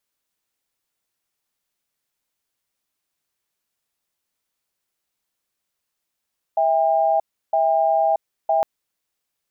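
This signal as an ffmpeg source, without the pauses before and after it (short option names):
-f lavfi -i "aevalsrc='0.126*(sin(2*PI*653*t)+sin(2*PI*802*t))*clip(min(mod(t,0.96),0.63-mod(t,0.96))/0.005,0,1)':d=2.06:s=44100"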